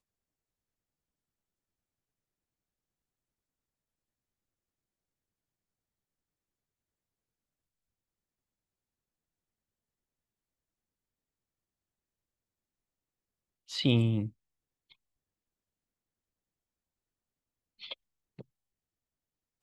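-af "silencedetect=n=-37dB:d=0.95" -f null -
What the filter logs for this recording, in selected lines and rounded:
silence_start: 0.00
silence_end: 13.71 | silence_duration: 13.71
silence_start: 14.28
silence_end: 17.83 | silence_duration: 3.55
silence_start: 18.41
silence_end: 19.63 | silence_duration: 1.22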